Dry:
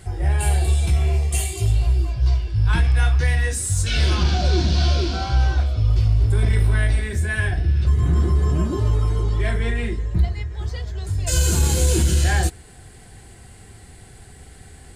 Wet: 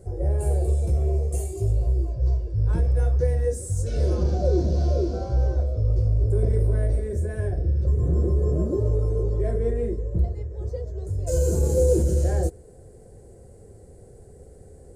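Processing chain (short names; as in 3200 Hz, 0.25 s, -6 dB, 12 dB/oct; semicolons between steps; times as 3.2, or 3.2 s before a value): EQ curve 290 Hz 0 dB, 530 Hz +14 dB, 760 Hz -6 dB, 3200 Hz -24 dB, 6100 Hz -8 dB; gain -4 dB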